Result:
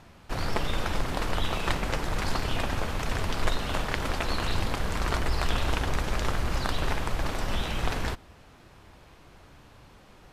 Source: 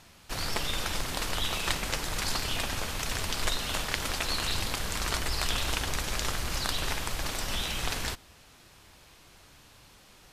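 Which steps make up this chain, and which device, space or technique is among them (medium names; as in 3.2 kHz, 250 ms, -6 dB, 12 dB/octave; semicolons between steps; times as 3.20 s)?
through cloth (treble shelf 2.6 kHz -15.5 dB); trim +6 dB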